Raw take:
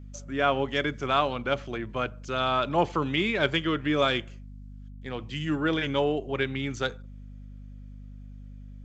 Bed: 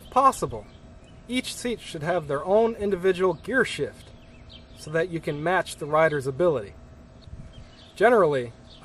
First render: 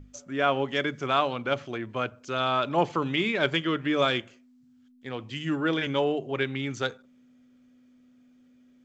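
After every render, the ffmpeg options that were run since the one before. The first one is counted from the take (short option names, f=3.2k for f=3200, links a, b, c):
-af "bandreject=f=50:t=h:w=6,bandreject=f=100:t=h:w=6,bandreject=f=150:t=h:w=6,bandreject=f=200:t=h:w=6"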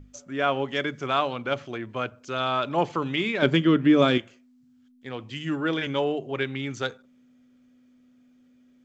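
-filter_complex "[0:a]asettb=1/sr,asplit=3[a][b][c];[a]atrim=end=3.424[d];[b]atrim=start=3.42:end=4.18,asetpts=PTS-STARTPTS,afade=t=in:d=0.004:c=qsin,afade=t=out:st=0.756:d=0.004:c=qsin,equalizer=f=220:t=o:w=1.7:g=13[e];[c]atrim=start=4.176[f];[d][e]acrossfade=d=0.004:c1=hsin:c2=qsin[g];[g][f]acrossfade=d=0.004:c1=qsin:c2=hsin"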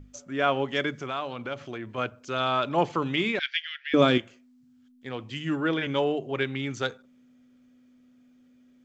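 -filter_complex "[0:a]asettb=1/sr,asplit=3[a][b][c];[a]atrim=end=0.924[d];[b]atrim=start=0.92:end=1.98,asetpts=PTS-STARTPTS,afade=t=in:d=0.004:c=qsin,afade=t=out:st=1.056:d=0.004:c=qsin,acompressor=threshold=-33dB:ratio=2:attack=3.2:release=140:knee=1:detection=peak[e];[c]atrim=start=1.976[f];[d][e]acrossfade=d=0.004:c1=hsin:c2=qsin[g];[g][f]acrossfade=d=0.004:c1=qsin:c2=hsin,asettb=1/sr,asplit=3[h][i][j];[h]atrim=end=3.394[k];[i]atrim=start=3.39:end=3.94,asetpts=PTS-STARTPTS,afade=t=in:d=0.004:c=qsin,afade=t=out:st=0.546:d=0.004:c=qsin,asuperpass=centerf=3100:order=12:qfactor=0.77[l];[j]atrim=start=3.936[m];[k][l]acrossfade=d=0.004:c1=hsin:c2=qsin[n];[n][m]acrossfade=d=0.004:c1=qsin:c2=hsin,asettb=1/sr,asplit=3[o][p][q];[o]atrim=end=5.404[r];[p]atrim=start=5.4:end=5.91,asetpts=PTS-STARTPTS,afade=t=in:d=0.004:c=qsin,afade=t=out:st=0.506:d=0.004:c=qsin,acrossover=split=3700[s][t];[t]acompressor=threshold=-49dB:ratio=4:attack=1:release=60[u];[s][u]amix=inputs=2:normalize=0[v];[q]atrim=start=5.906[w];[r][v]acrossfade=d=0.004:c1=hsin:c2=qsin[x];[x][w]acrossfade=d=0.004:c1=qsin:c2=hsin"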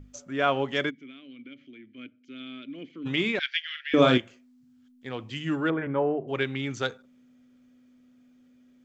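-filter_complex "[0:a]asplit=3[a][b][c];[a]afade=t=out:st=0.89:d=0.02[d];[b]asplit=3[e][f][g];[e]bandpass=f=270:t=q:w=8,volume=0dB[h];[f]bandpass=f=2.29k:t=q:w=8,volume=-6dB[i];[g]bandpass=f=3.01k:t=q:w=8,volume=-9dB[j];[h][i][j]amix=inputs=3:normalize=0,afade=t=in:st=0.89:d=0.02,afade=t=out:st=3.05:d=0.02[k];[c]afade=t=in:st=3.05:d=0.02[l];[d][k][l]amix=inputs=3:normalize=0,asettb=1/sr,asplit=3[m][n][o];[m]atrim=end=3.644[p];[n]atrim=start=3.64:end=4.17,asetpts=PTS-STARTPTS,afade=t=in:d=0.004:c=qsin,afade=t=out:st=0.526:d=0.004:c=qsin,asplit=2[q][r];[r]adelay=46,volume=-6.5dB[s];[q][s]amix=inputs=2:normalize=0,atrim=end_sample=23373[t];[o]atrim=start=4.166[u];[p][t]acrossfade=d=0.004:c1=hsin:c2=qsin[v];[v][u]acrossfade=d=0.004:c1=qsin:c2=hsin,asettb=1/sr,asplit=3[w][x][y];[w]atrim=end=5.704[z];[x]atrim=start=5.7:end=6.28,asetpts=PTS-STARTPTS,afade=t=in:d=0.004:c=qsin,afade=t=out:st=0.576:d=0.004:c=qsin,lowpass=f=1.7k:w=0.5412,lowpass=f=1.7k:w=1.3066[aa];[y]atrim=start=6.276[ab];[z][aa]acrossfade=d=0.004:c1=hsin:c2=qsin[ac];[ac][ab]acrossfade=d=0.004:c1=qsin:c2=hsin"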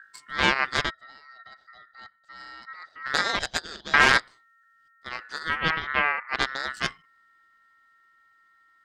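-af "aeval=exprs='0.501*(cos(1*acos(clip(val(0)/0.501,-1,1)))-cos(1*PI/2))+0.178*(cos(6*acos(clip(val(0)/0.501,-1,1)))-cos(6*PI/2))':c=same,aeval=exprs='val(0)*sin(2*PI*1600*n/s)':c=same"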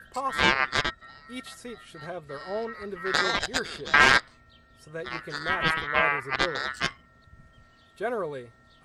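-filter_complex "[1:a]volume=-12dB[a];[0:a][a]amix=inputs=2:normalize=0"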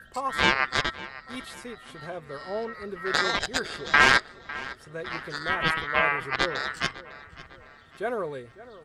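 -filter_complex "[0:a]asplit=2[a][b];[b]adelay=553,lowpass=f=3.8k:p=1,volume=-17dB,asplit=2[c][d];[d]adelay=553,lowpass=f=3.8k:p=1,volume=0.49,asplit=2[e][f];[f]adelay=553,lowpass=f=3.8k:p=1,volume=0.49,asplit=2[g][h];[h]adelay=553,lowpass=f=3.8k:p=1,volume=0.49[i];[a][c][e][g][i]amix=inputs=5:normalize=0"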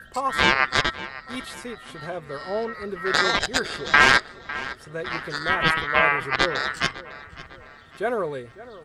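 -af "volume=4.5dB,alimiter=limit=-2dB:level=0:latency=1"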